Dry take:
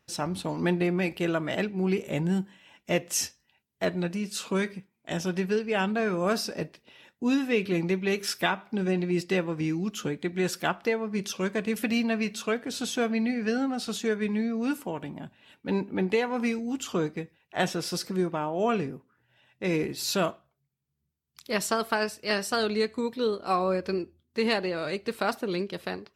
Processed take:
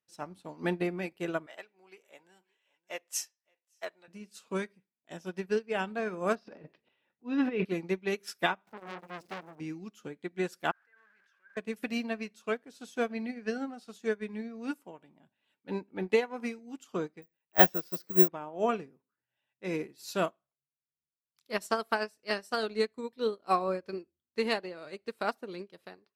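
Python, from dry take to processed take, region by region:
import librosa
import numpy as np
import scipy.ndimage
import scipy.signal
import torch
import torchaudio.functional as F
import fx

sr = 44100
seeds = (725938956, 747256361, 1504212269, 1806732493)

y = fx.chain(x, sr, fx.highpass(hz=650.0, slope=12),
    fx.echo_single(ms=568, db=-22.5), at=(1.46, 4.08))
y = fx.chain(y, sr, fx.transient(attack_db=-7, sustain_db=12),
    fx.air_absorb(metres=280.0), at=(6.35, 7.65))
y = fx.chain(y, sr, fx.zero_step(step_db=-36.5),
    fx.low_shelf(hz=180.0, db=8.5),
    fx.transformer_sat(knee_hz=2000.0), at=(8.67, 9.6))
y = fx.chain(y, sr, fx.zero_step(step_db=-29.0),
    fx.bandpass_q(hz=1600.0, q=16.0),
    fx.sustainer(db_per_s=25.0), at=(10.71, 11.57))
y = fx.chain(y, sr, fx.lowpass(hz=3600.0, slope=6),
    fx.resample_bad(factor=2, down='filtered', up='zero_stuff'), at=(17.22, 18.28))
y = fx.highpass(y, sr, hz=220.0, slope=6)
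y = fx.dynamic_eq(y, sr, hz=3400.0, q=0.79, threshold_db=-44.0, ratio=4.0, max_db=-3)
y = fx.upward_expand(y, sr, threshold_db=-38.0, expansion=2.5)
y = y * 10.0 ** (6.0 / 20.0)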